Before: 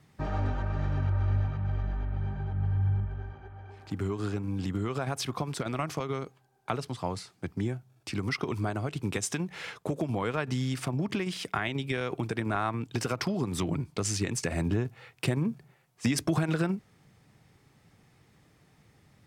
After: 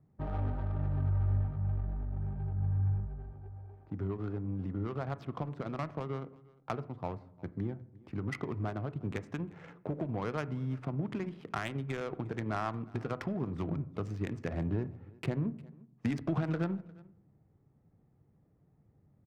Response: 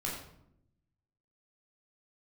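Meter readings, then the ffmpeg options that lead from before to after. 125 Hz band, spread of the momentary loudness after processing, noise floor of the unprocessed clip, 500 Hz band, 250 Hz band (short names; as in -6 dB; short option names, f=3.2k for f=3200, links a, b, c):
-3.5 dB, 10 LU, -64 dBFS, -5.0 dB, -4.5 dB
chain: -filter_complex "[0:a]adynamicsmooth=sensitivity=2.5:basefreq=670,aecho=1:1:354:0.0631,asplit=2[a][b];[1:a]atrim=start_sample=2205,lowpass=2.2k[c];[b][c]afir=irnorm=-1:irlink=0,volume=-16dB[d];[a][d]amix=inputs=2:normalize=0,volume=-5.5dB"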